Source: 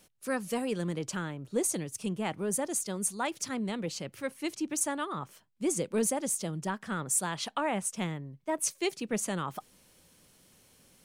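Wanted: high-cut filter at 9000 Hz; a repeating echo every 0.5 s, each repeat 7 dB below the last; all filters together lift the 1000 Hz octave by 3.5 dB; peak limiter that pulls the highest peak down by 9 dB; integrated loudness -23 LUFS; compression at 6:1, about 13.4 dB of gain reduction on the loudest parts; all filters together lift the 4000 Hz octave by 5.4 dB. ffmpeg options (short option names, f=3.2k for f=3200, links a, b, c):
-af "lowpass=9k,equalizer=f=1k:t=o:g=4,equalizer=f=4k:t=o:g=7,acompressor=threshold=-39dB:ratio=6,alimiter=level_in=11.5dB:limit=-24dB:level=0:latency=1,volume=-11.5dB,aecho=1:1:500|1000|1500|2000|2500:0.447|0.201|0.0905|0.0407|0.0183,volume=21.5dB"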